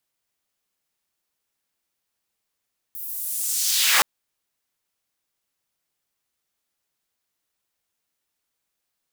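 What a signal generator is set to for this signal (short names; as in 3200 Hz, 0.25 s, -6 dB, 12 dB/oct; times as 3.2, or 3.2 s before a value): swept filtered noise pink, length 1.07 s highpass, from 15000 Hz, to 670 Hz, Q 1.4, linear, gain ramp +11 dB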